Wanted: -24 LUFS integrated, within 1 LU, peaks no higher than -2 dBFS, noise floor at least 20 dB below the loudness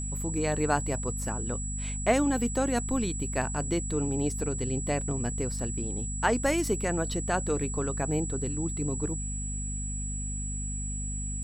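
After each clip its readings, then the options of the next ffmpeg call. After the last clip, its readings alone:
hum 50 Hz; highest harmonic 250 Hz; hum level -32 dBFS; steady tone 7.8 kHz; tone level -36 dBFS; loudness -30.0 LUFS; peak level -10.0 dBFS; loudness target -24.0 LUFS
-> -af "bandreject=f=50:t=h:w=6,bandreject=f=100:t=h:w=6,bandreject=f=150:t=h:w=6,bandreject=f=200:t=h:w=6,bandreject=f=250:t=h:w=6"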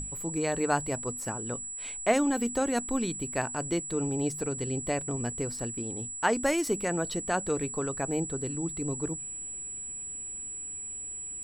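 hum not found; steady tone 7.8 kHz; tone level -36 dBFS
-> -af "bandreject=f=7800:w=30"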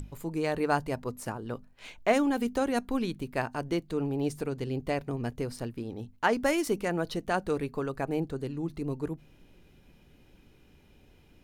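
steady tone not found; loudness -31.5 LUFS; peak level -11.0 dBFS; loudness target -24.0 LUFS
-> -af "volume=2.37"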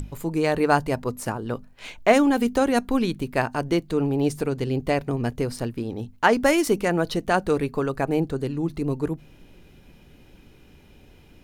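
loudness -24.0 LUFS; peak level -3.5 dBFS; noise floor -52 dBFS

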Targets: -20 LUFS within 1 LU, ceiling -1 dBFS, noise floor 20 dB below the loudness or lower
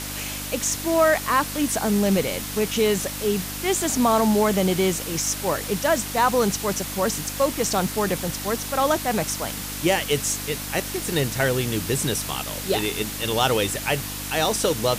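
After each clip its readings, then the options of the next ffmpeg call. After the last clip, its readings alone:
hum 50 Hz; highest harmonic 300 Hz; hum level -34 dBFS; noise floor -32 dBFS; noise floor target -43 dBFS; loudness -23.0 LUFS; peak level -6.5 dBFS; loudness target -20.0 LUFS
-> -af "bandreject=f=50:t=h:w=4,bandreject=f=100:t=h:w=4,bandreject=f=150:t=h:w=4,bandreject=f=200:t=h:w=4,bandreject=f=250:t=h:w=4,bandreject=f=300:t=h:w=4"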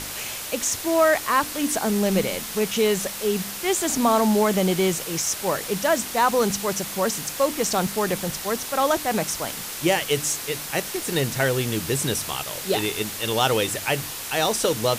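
hum not found; noise floor -33 dBFS; noise floor target -43 dBFS
-> -af "afftdn=nr=10:nf=-33"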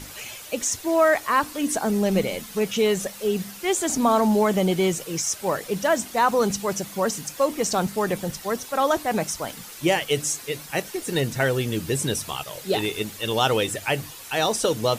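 noise floor -41 dBFS; noise floor target -44 dBFS
-> -af "afftdn=nr=6:nf=-41"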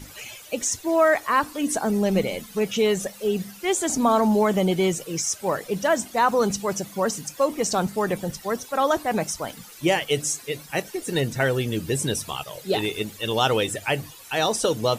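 noise floor -45 dBFS; loudness -24.0 LUFS; peak level -7.5 dBFS; loudness target -20.0 LUFS
-> -af "volume=1.58"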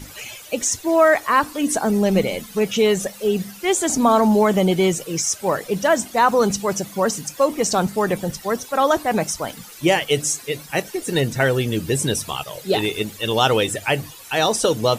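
loudness -20.0 LUFS; peak level -3.5 dBFS; noise floor -41 dBFS

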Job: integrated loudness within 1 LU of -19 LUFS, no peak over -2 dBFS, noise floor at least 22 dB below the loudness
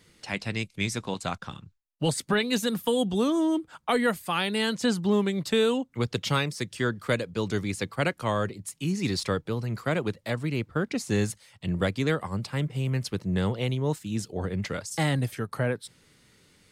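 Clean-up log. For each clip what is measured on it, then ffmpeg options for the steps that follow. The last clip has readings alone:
loudness -28.5 LUFS; peak level -13.5 dBFS; loudness target -19.0 LUFS
-> -af "volume=2.99"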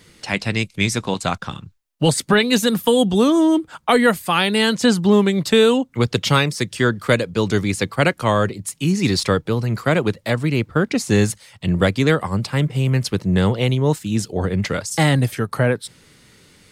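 loudness -19.0 LUFS; peak level -4.0 dBFS; noise floor -55 dBFS

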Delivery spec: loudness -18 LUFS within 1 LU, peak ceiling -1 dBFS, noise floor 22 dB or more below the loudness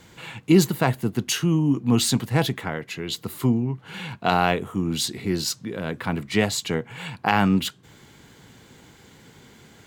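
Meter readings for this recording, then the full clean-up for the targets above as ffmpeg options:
loudness -23.5 LUFS; peak level -3.0 dBFS; loudness target -18.0 LUFS
-> -af "volume=1.88,alimiter=limit=0.891:level=0:latency=1"

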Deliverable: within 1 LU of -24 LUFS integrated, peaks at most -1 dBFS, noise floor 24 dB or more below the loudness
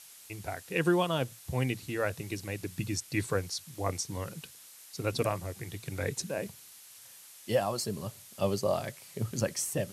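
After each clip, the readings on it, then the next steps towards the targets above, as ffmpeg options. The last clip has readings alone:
noise floor -53 dBFS; noise floor target -58 dBFS; loudness -33.5 LUFS; peak level -15.0 dBFS; loudness target -24.0 LUFS
-> -af "afftdn=nr=6:nf=-53"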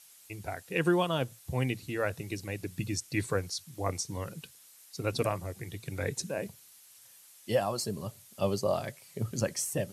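noise floor -57 dBFS; noise floor target -58 dBFS
-> -af "afftdn=nr=6:nf=-57"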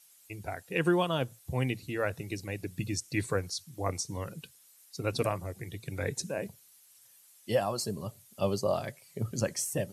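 noise floor -60 dBFS; loudness -33.5 LUFS; peak level -15.0 dBFS; loudness target -24.0 LUFS
-> -af "volume=2.99"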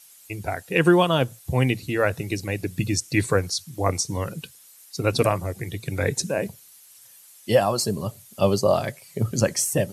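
loudness -24.0 LUFS; peak level -5.5 dBFS; noise floor -51 dBFS

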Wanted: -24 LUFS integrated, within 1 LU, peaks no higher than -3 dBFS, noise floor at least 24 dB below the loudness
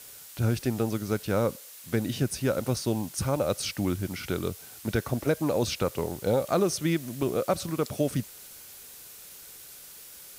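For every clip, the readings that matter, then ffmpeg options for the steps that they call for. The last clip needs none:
noise floor -47 dBFS; noise floor target -53 dBFS; loudness -29.0 LUFS; peak level -13.5 dBFS; loudness target -24.0 LUFS
-> -af "afftdn=nr=6:nf=-47"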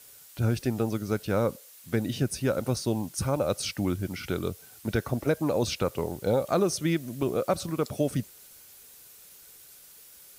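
noise floor -52 dBFS; noise floor target -53 dBFS
-> -af "afftdn=nr=6:nf=-52"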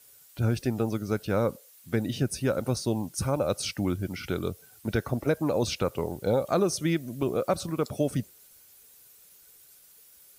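noise floor -56 dBFS; loudness -29.0 LUFS; peak level -13.5 dBFS; loudness target -24.0 LUFS
-> -af "volume=1.78"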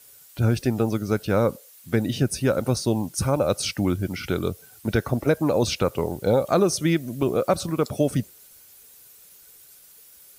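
loudness -24.0 LUFS; peak level -8.5 dBFS; noise floor -51 dBFS

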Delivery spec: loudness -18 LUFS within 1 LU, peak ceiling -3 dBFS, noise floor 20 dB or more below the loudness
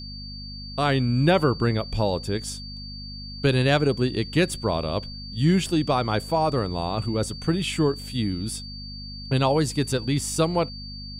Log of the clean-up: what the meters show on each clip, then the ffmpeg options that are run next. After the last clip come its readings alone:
hum 50 Hz; highest harmonic 250 Hz; hum level -37 dBFS; steady tone 4.6 kHz; tone level -38 dBFS; loudness -24.0 LUFS; peak level -5.0 dBFS; loudness target -18.0 LUFS
-> -af "bandreject=f=50:t=h:w=4,bandreject=f=100:t=h:w=4,bandreject=f=150:t=h:w=4,bandreject=f=200:t=h:w=4,bandreject=f=250:t=h:w=4"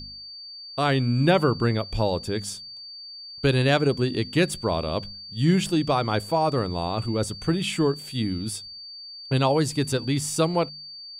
hum not found; steady tone 4.6 kHz; tone level -38 dBFS
-> -af "bandreject=f=4600:w=30"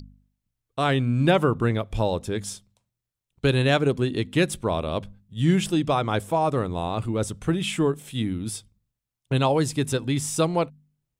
steady tone not found; loudness -24.5 LUFS; peak level -6.0 dBFS; loudness target -18.0 LUFS
-> -af "volume=2.11,alimiter=limit=0.708:level=0:latency=1"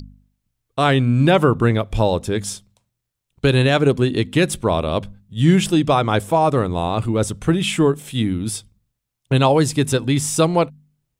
loudness -18.5 LUFS; peak level -3.0 dBFS; noise floor -79 dBFS

